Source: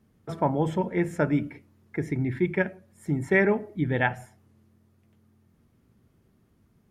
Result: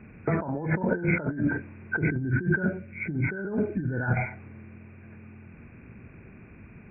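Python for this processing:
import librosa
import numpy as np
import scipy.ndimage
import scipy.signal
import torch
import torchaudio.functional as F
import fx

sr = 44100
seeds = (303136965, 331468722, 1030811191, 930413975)

y = fx.freq_compress(x, sr, knee_hz=1400.0, ratio=4.0)
y = fx.peak_eq(y, sr, hz=830.0, db=-11.5, octaves=1.3, at=(2.1, 4.17))
y = fx.over_compress(y, sr, threshold_db=-36.0, ratio=-1.0)
y = y * 10.0 ** (8.0 / 20.0)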